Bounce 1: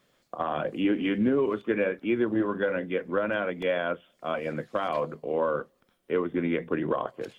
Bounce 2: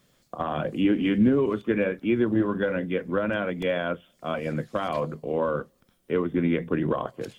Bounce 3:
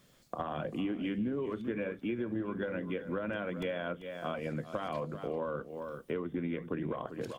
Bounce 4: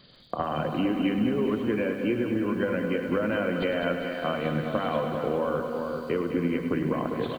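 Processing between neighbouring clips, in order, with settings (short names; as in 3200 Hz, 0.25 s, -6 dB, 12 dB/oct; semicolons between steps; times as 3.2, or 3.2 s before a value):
tone controls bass +9 dB, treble +7 dB
echo 0.391 s -15 dB; compressor 4:1, threshold -34 dBFS, peak gain reduction 15 dB
nonlinear frequency compression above 3000 Hz 4:1; feedback echo 0.204 s, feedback 56%, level -9 dB; lo-fi delay 0.104 s, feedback 80%, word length 10-bit, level -10.5 dB; gain +7.5 dB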